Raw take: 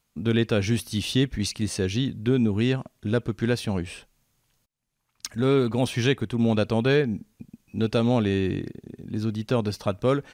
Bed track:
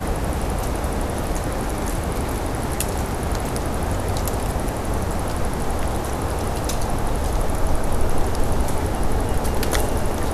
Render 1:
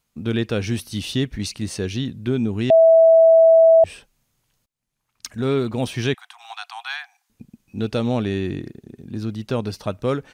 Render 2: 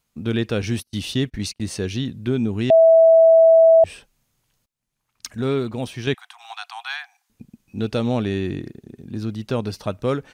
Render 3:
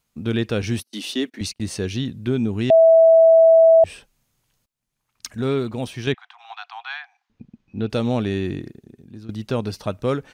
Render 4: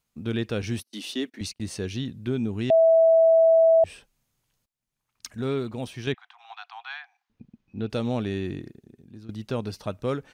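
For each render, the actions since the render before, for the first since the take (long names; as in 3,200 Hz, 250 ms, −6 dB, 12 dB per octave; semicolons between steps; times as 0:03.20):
0:02.70–0:03.84: beep over 654 Hz −8 dBFS; 0:06.14–0:07.30: Chebyshev high-pass filter 710 Hz, order 10
0:00.62–0:01.61: noise gate −34 dBFS, range −31 dB; 0:05.35–0:06.07: fade out, to −7 dB
0:00.84–0:01.41: Butterworth high-pass 230 Hz; 0:06.12–0:07.90: high-frequency loss of the air 200 metres; 0:08.50–0:09.29: fade out, to −14.5 dB
level −5.5 dB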